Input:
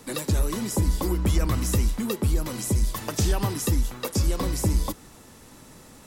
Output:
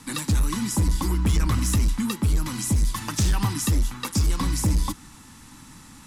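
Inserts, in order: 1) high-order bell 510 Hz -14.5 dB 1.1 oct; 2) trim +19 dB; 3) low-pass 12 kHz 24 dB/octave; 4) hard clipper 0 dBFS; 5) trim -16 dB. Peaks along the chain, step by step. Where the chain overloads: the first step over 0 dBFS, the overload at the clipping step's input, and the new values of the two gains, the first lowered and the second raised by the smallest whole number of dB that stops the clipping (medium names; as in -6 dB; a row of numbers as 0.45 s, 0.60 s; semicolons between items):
-13.0 dBFS, +6.0 dBFS, +6.0 dBFS, 0.0 dBFS, -16.0 dBFS; step 2, 6.0 dB; step 2 +13 dB, step 5 -10 dB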